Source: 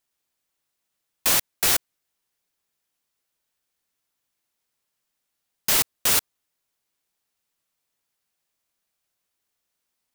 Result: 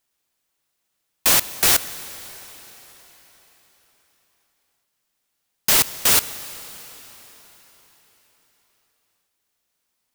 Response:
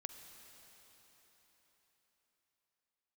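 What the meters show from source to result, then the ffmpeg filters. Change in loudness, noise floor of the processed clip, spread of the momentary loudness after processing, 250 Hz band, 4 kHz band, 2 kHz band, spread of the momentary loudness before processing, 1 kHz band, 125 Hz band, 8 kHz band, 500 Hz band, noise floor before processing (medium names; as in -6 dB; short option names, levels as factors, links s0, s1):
+3.5 dB, -76 dBFS, 20 LU, +4.5 dB, +4.5 dB, +4.5 dB, 5 LU, +4.5 dB, +4.5 dB, +4.5 dB, +4.5 dB, -80 dBFS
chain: -filter_complex "[0:a]asplit=2[s0][s1];[1:a]atrim=start_sample=2205[s2];[s1][s2]afir=irnorm=-1:irlink=0,volume=1.33[s3];[s0][s3]amix=inputs=2:normalize=0,volume=0.891"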